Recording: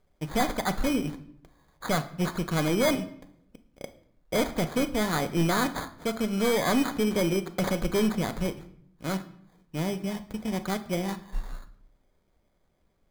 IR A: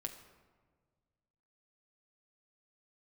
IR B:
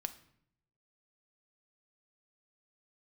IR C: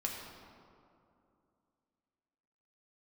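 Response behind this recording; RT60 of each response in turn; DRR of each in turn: B; 1.6, 0.70, 2.6 s; 4.0, 8.5, -1.0 dB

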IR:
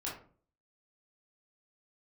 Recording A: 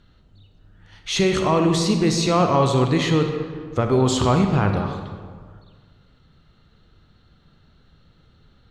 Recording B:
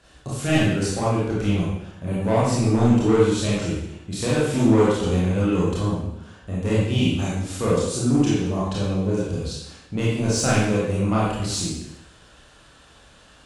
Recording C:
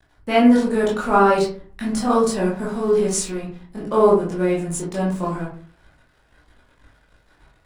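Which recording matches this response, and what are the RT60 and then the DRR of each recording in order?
C; 1.8, 0.85, 0.45 s; 4.5, -8.0, -6.0 dB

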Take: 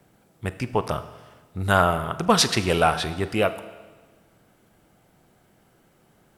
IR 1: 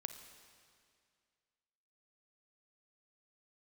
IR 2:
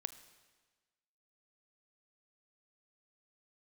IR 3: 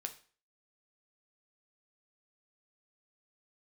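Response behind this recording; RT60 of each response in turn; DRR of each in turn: 2; 2.2, 1.4, 0.40 s; 8.0, 12.0, 6.0 dB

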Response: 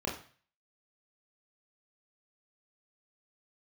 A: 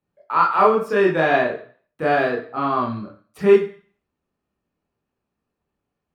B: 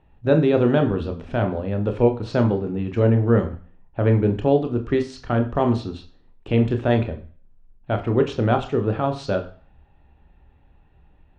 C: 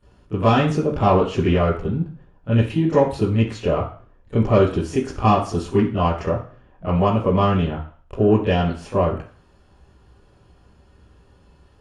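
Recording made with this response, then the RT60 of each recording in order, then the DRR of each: A; 0.40, 0.40, 0.40 s; -4.0, 5.0, -12.5 dB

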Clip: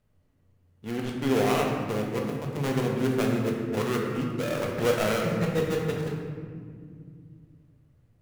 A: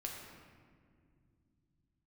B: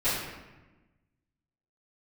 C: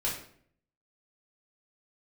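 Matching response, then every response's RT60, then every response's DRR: A; 2.2, 1.1, 0.60 s; -1.0, -17.0, -5.5 dB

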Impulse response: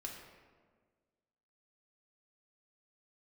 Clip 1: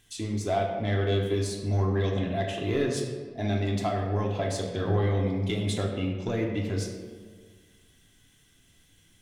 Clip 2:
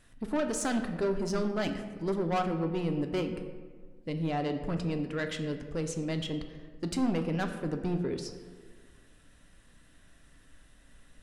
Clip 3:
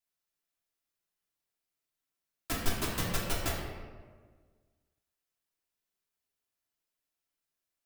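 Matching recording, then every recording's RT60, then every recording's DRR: 1; 1.6, 1.6, 1.6 s; -1.0, 5.5, -6.0 dB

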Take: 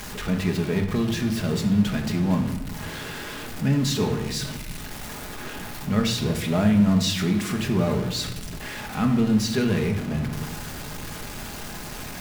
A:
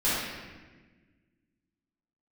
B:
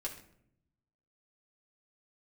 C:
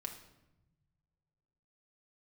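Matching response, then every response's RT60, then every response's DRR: C; 1.4, 0.70, 0.95 s; -12.0, -3.5, 2.5 dB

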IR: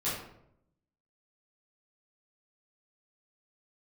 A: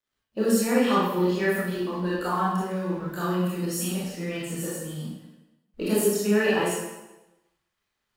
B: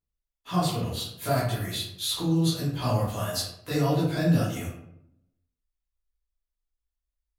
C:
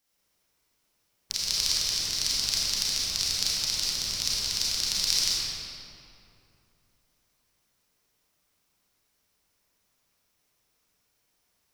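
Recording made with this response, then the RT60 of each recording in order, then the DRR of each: B; 1.0, 0.75, 2.8 s; -8.0, -11.0, -7.5 dB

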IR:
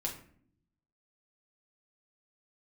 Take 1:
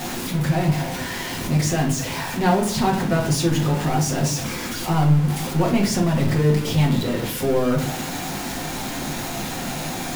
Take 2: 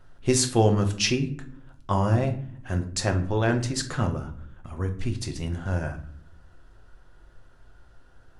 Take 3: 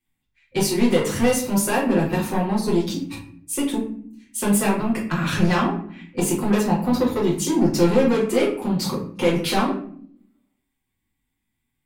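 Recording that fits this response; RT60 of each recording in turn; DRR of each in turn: 1; 0.55, 0.60, 0.55 s; -1.0, 4.5, -6.0 dB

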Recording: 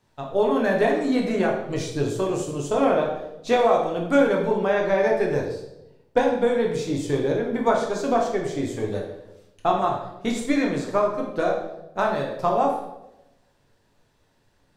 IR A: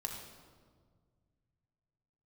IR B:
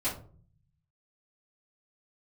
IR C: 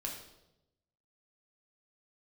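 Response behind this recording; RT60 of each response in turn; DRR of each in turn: C; 1.8, 0.45, 0.90 s; 1.5, -12.5, -1.0 dB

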